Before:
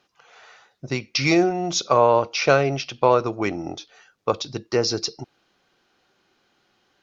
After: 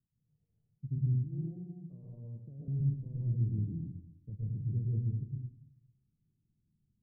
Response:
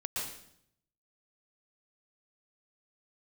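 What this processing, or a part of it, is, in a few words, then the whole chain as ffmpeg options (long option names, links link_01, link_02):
club heard from the street: -filter_complex "[0:a]asettb=1/sr,asplit=3[link_01][link_02][link_03];[link_01]atrim=end=1.094[link_04];[link_02]atrim=start=1.09:end=2.68,asetpts=PTS-STARTPTS,afade=type=in:duration=0.004:curve=qsin,afade=type=out:start_time=1.586:duration=0.004:curve=qsin,highpass=frequency=520:poles=1[link_05];[link_03]atrim=start=2.676[link_06];[link_04][link_05]acrossfade=duration=0.004:curve1=hsin:curve2=qsin[link_07];[link_07][link_06]acrossfade=duration=0.004:curve1=qsin:curve2=hsin,alimiter=limit=-12.5dB:level=0:latency=1:release=17,lowpass=frequency=160:width=0.5412,lowpass=frequency=160:width=1.3066[link_08];[1:a]atrim=start_sample=2205[link_09];[link_08][link_09]afir=irnorm=-1:irlink=0"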